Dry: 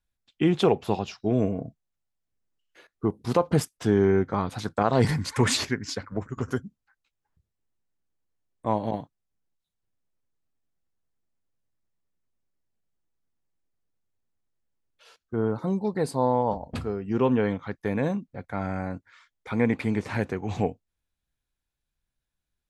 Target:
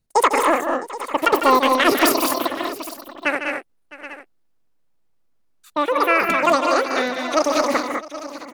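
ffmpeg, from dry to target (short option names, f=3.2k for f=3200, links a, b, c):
-af "acontrast=72,asetrate=117306,aresample=44100,aecho=1:1:151|196|219|660|775|845:0.335|0.473|0.422|0.106|0.178|0.126"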